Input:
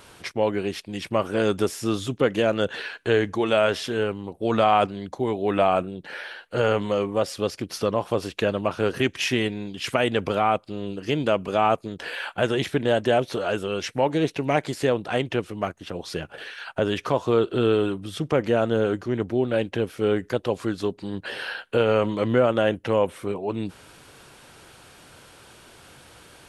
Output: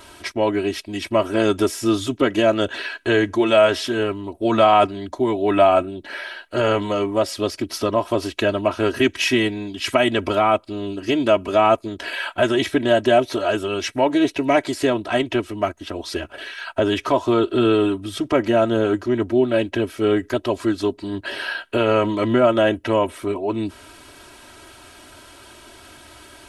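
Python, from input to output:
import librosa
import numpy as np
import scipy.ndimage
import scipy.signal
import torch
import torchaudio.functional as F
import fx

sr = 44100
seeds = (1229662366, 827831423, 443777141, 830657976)

y = x + 0.85 * np.pad(x, (int(3.1 * sr / 1000.0), 0))[:len(x)]
y = y * 10.0 ** (2.5 / 20.0)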